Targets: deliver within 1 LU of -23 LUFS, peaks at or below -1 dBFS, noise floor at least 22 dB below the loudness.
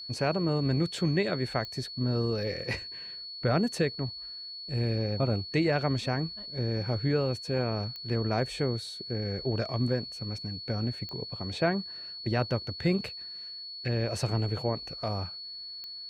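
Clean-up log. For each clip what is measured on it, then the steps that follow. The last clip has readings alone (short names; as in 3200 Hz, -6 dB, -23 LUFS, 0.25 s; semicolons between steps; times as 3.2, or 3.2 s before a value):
clicks 4; steady tone 4400 Hz; tone level -39 dBFS; loudness -31.0 LUFS; peak -16.0 dBFS; loudness target -23.0 LUFS
-> de-click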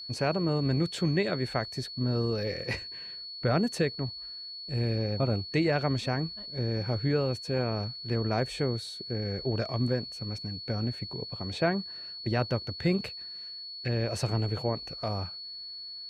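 clicks 0; steady tone 4400 Hz; tone level -39 dBFS
-> notch 4400 Hz, Q 30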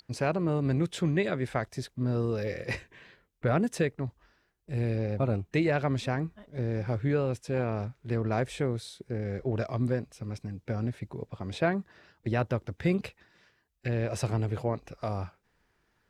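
steady tone none; loudness -31.5 LUFS; peak -16.5 dBFS; loudness target -23.0 LUFS
-> gain +8.5 dB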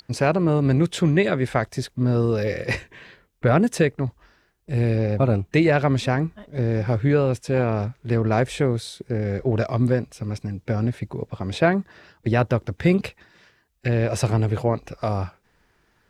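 loudness -23.0 LUFS; peak -8.0 dBFS; noise floor -64 dBFS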